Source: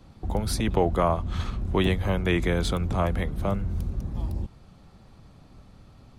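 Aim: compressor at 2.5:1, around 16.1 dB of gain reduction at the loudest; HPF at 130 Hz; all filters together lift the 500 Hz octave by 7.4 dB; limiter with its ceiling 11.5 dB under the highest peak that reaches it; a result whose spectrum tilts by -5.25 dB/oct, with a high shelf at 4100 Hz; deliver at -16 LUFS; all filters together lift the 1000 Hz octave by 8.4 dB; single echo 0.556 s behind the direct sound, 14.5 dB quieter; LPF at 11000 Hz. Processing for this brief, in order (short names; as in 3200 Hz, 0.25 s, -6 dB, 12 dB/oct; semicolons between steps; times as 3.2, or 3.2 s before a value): HPF 130 Hz; LPF 11000 Hz; bell 500 Hz +7 dB; bell 1000 Hz +8 dB; high shelf 4100 Hz +5.5 dB; compressor 2.5:1, threshold -36 dBFS; limiter -27.5 dBFS; echo 0.556 s -14.5 dB; gain +22.5 dB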